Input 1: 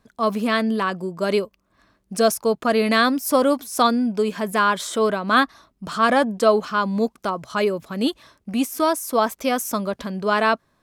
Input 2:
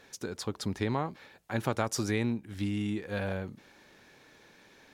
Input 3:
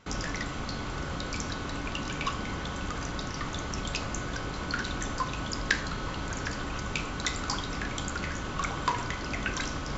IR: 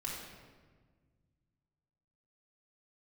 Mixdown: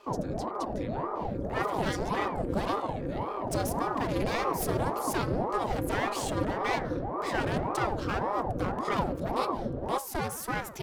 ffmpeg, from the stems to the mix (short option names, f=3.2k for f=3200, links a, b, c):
-filter_complex "[0:a]bandreject=f=74.02:t=h:w=4,bandreject=f=148.04:t=h:w=4,bandreject=f=222.06:t=h:w=4,bandreject=f=296.08:t=h:w=4,bandreject=f=370.1:t=h:w=4,bandreject=f=444.12:t=h:w=4,bandreject=f=518.14:t=h:w=4,bandreject=f=592.16:t=h:w=4,bandreject=f=666.18:t=h:w=4,bandreject=f=740.2:t=h:w=4,bandreject=f=814.22:t=h:w=4,bandreject=f=888.24:t=h:w=4,bandreject=f=962.26:t=h:w=4,bandreject=f=1.03628k:t=h:w=4,bandreject=f=1.1103k:t=h:w=4,bandreject=f=1.18432k:t=h:w=4,bandreject=f=1.25834k:t=h:w=4,bandreject=f=1.33236k:t=h:w=4,bandreject=f=1.40638k:t=h:w=4,bandreject=f=1.4804k:t=h:w=4,bandreject=f=1.55442k:t=h:w=4,bandreject=f=1.62844k:t=h:w=4,bandreject=f=1.70246k:t=h:w=4,bandreject=f=1.77648k:t=h:w=4,bandreject=f=1.8505k:t=h:w=4,bandreject=f=1.92452k:t=h:w=4,bandreject=f=1.99854k:t=h:w=4,bandreject=f=2.07256k:t=h:w=4,acompressor=threshold=-20dB:ratio=4,aeval=exprs='clip(val(0),-1,0.0335)':c=same,adelay=1350,volume=-4dB,asplit=2[a][b];[b]volume=-18dB[c];[1:a]highpass=1.4k,acompressor=threshold=-49dB:ratio=2,volume=0.5dB[d];[2:a]lowpass=f=400:t=q:w=4.9,aecho=1:1:4.8:0.95,volume=-1dB[e];[3:a]atrim=start_sample=2205[f];[c][f]afir=irnorm=-1:irlink=0[g];[a][d][e][g]amix=inputs=4:normalize=0,aeval=exprs='val(0)*sin(2*PI*460*n/s+460*0.8/1.8*sin(2*PI*1.8*n/s))':c=same"